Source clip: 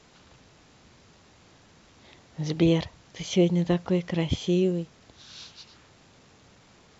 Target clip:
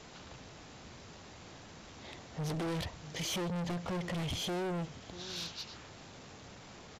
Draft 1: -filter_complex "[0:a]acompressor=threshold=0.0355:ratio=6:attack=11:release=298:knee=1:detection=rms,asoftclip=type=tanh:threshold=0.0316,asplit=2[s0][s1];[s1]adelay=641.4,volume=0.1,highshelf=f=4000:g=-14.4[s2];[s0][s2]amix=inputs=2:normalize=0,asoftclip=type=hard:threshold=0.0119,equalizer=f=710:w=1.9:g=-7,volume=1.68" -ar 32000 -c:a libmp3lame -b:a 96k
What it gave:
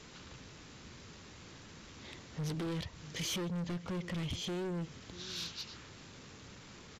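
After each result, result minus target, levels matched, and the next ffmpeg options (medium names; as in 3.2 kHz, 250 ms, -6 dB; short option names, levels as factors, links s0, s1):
compression: peak gain reduction +6 dB; 1 kHz band -4.5 dB
-filter_complex "[0:a]acompressor=threshold=0.0794:ratio=6:attack=11:release=298:knee=1:detection=rms,asoftclip=type=tanh:threshold=0.0316,asplit=2[s0][s1];[s1]adelay=641.4,volume=0.1,highshelf=f=4000:g=-14.4[s2];[s0][s2]amix=inputs=2:normalize=0,asoftclip=type=hard:threshold=0.0119,equalizer=f=710:w=1.9:g=-7,volume=1.68" -ar 32000 -c:a libmp3lame -b:a 96k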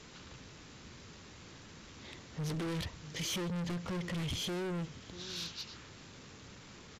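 1 kHz band -4.0 dB
-filter_complex "[0:a]acompressor=threshold=0.0794:ratio=6:attack=11:release=298:knee=1:detection=rms,asoftclip=type=tanh:threshold=0.0316,asplit=2[s0][s1];[s1]adelay=641.4,volume=0.1,highshelf=f=4000:g=-14.4[s2];[s0][s2]amix=inputs=2:normalize=0,asoftclip=type=hard:threshold=0.0119,equalizer=f=710:w=1.9:g=2,volume=1.68" -ar 32000 -c:a libmp3lame -b:a 96k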